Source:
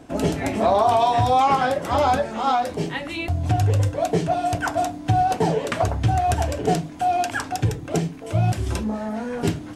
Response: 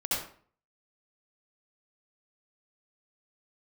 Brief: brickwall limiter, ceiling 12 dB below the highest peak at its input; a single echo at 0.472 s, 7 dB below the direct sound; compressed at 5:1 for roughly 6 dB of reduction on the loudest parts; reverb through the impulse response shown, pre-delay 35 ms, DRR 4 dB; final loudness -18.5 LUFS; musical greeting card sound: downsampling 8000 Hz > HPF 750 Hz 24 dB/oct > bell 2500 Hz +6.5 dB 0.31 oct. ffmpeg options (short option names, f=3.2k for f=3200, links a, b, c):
-filter_complex "[0:a]acompressor=threshold=-21dB:ratio=5,alimiter=limit=-21.5dB:level=0:latency=1,aecho=1:1:472:0.447,asplit=2[a][b];[1:a]atrim=start_sample=2205,adelay=35[c];[b][c]afir=irnorm=-1:irlink=0,volume=-11.5dB[d];[a][d]amix=inputs=2:normalize=0,aresample=8000,aresample=44100,highpass=f=750:w=0.5412,highpass=f=750:w=1.3066,equalizer=f=2.5k:t=o:w=0.31:g=6.5,volume=14dB"